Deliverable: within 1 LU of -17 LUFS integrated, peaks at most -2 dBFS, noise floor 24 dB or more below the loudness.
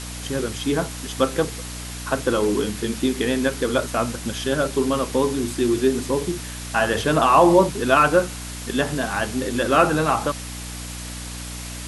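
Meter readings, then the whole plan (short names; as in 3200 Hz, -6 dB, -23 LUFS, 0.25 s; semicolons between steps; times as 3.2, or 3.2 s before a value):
hum 60 Hz; harmonics up to 300 Hz; hum level -33 dBFS; noise floor -33 dBFS; noise floor target -46 dBFS; loudness -21.5 LUFS; peak -2.5 dBFS; loudness target -17.0 LUFS
-> de-hum 60 Hz, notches 5; denoiser 13 dB, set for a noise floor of -33 dBFS; gain +4.5 dB; limiter -2 dBFS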